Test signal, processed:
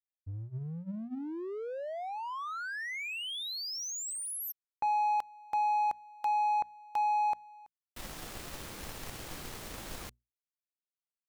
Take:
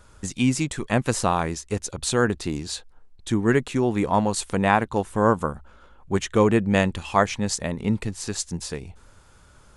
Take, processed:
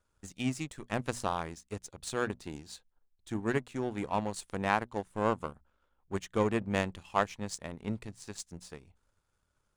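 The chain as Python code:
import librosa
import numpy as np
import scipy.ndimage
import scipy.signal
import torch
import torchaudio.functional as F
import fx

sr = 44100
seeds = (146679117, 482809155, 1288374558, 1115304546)

y = fx.hum_notches(x, sr, base_hz=60, count=4)
y = fx.power_curve(y, sr, exponent=1.4)
y = y * librosa.db_to_amplitude(-6.5)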